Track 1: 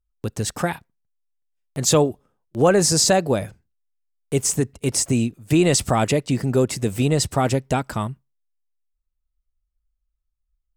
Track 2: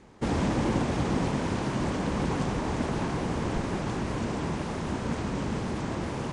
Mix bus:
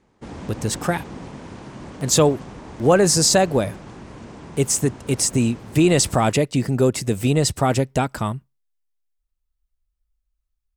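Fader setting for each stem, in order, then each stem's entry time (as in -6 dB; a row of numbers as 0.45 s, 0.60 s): +1.0 dB, -8.5 dB; 0.25 s, 0.00 s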